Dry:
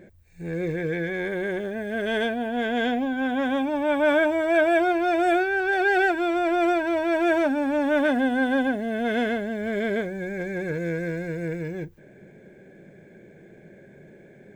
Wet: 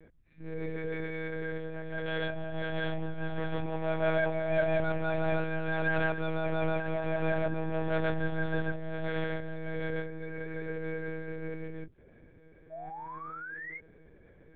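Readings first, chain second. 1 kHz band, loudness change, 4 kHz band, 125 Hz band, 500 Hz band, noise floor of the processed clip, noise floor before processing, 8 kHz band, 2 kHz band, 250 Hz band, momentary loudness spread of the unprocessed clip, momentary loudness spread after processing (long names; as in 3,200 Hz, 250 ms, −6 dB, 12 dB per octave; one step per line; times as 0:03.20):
−11.5 dB, −9.5 dB, −9.5 dB, +1.0 dB, −8.5 dB, −58 dBFS, −51 dBFS, can't be measured, −9.0 dB, −12.0 dB, 10 LU, 12 LU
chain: sound drawn into the spectrogram rise, 0:12.71–0:13.79, 630–2,200 Hz −34 dBFS
one-pitch LPC vocoder at 8 kHz 160 Hz
level −7.5 dB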